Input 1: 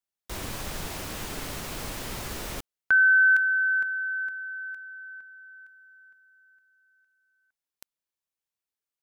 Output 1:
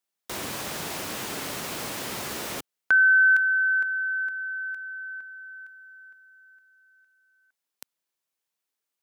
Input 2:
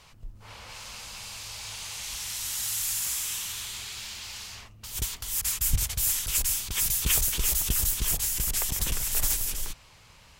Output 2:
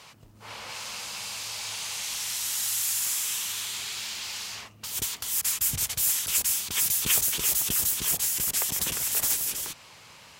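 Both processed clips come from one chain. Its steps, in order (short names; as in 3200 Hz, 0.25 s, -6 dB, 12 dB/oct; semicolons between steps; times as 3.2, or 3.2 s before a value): Bessel high-pass 190 Hz, order 2; in parallel at -0.5 dB: compressor, threshold -39 dBFS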